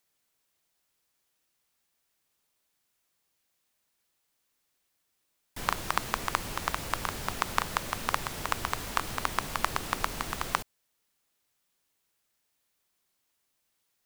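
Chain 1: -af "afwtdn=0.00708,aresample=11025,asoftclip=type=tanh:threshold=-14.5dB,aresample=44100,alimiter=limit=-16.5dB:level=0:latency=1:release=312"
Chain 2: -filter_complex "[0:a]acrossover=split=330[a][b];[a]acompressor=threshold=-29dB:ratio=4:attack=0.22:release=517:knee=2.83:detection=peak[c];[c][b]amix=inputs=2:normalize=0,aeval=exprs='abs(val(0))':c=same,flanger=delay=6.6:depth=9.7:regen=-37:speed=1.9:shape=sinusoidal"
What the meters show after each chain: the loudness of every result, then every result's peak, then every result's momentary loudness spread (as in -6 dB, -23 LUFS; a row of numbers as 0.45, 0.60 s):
-38.0, -38.0 LUFS; -16.5, -9.5 dBFS; 2, 3 LU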